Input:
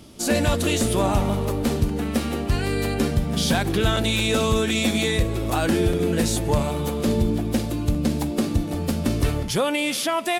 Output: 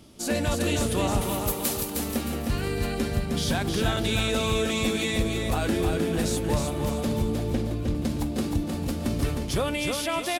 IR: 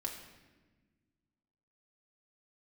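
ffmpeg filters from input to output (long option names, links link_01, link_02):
-filter_complex "[0:a]asettb=1/sr,asplit=3[link_01][link_02][link_03];[link_01]atrim=end=1.214[link_04];[link_02]atrim=start=1.21:end=1.96,asetpts=PTS-STARTPTS,afade=type=in:duration=0.004:curve=qsin,afade=type=out:start_time=0.746:duration=0.004:curve=qsin,aemphasis=mode=production:type=riaa[link_05];[link_03]atrim=start=1.956[link_06];[link_04][link_05]acrossfade=duration=0.004:curve1=hsin:curve2=qsin[link_07];[link_07][link_06]acrossfade=duration=0.004:curve1=qsin:curve2=hsin,asettb=1/sr,asplit=3[link_08][link_09][link_10];[link_08]atrim=end=7.494[link_11];[link_09]atrim=start=7.49:end=7.95,asetpts=PTS-STARTPTS,afade=type=in:duration=0.004:curve=qsin,afade=type=out:start_time=0.456:duration=0.004:curve=qsin,lowpass=frequency=3000:poles=1[link_12];[link_10]atrim=start=7.946[link_13];[link_11][link_12]acrossfade=duration=0.004:curve1=hsin:curve2=qsin[link_14];[link_14][link_13]acrossfade=duration=0.004:curve1=qsin:curve2=hsin,aecho=1:1:310|620|930|1240:0.596|0.208|0.073|0.0255,volume=-5.5dB"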